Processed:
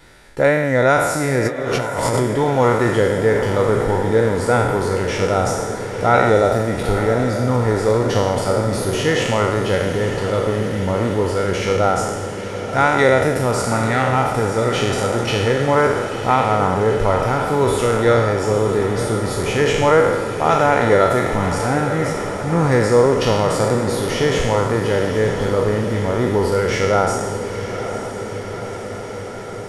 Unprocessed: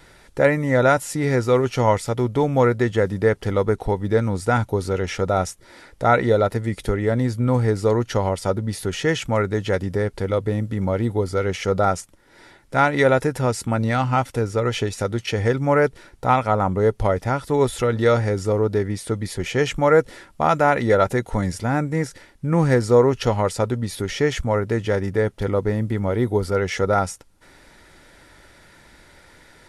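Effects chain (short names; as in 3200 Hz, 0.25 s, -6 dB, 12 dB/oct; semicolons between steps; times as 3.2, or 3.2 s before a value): spectral trails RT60 1.19 s; 1.45–2.2 negative-ratio compressor -21 dBFS, ratio -0.5; diffused feedback echo 0.936 s, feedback 72%, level -10 dB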